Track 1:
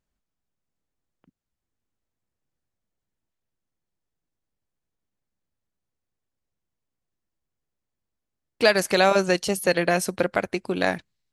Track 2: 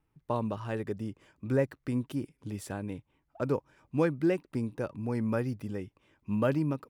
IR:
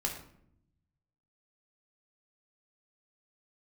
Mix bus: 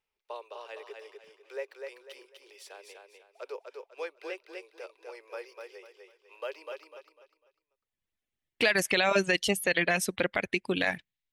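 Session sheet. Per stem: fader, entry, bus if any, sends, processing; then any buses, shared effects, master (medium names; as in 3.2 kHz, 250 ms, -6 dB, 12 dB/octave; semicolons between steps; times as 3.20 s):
7.49 s -13.5 dB -> 8.10 s -2.5 dB, 0.00 s, no send, no echo send, reverb removal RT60 1 s; high-order bell 2.5 kHz +9.5 dB 1.3 oct
-8.5 dB, 0.00 s, no send, echo send -4.5 dB, steep high-pass 390 Hz 72 dB/octave; high-order bell 3.5 kHz +9.5 dB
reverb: none
echo: feedback delay 249 ms, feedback 31%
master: peak limiter -13.5 dBFS, peak gain reduction 9.5 dB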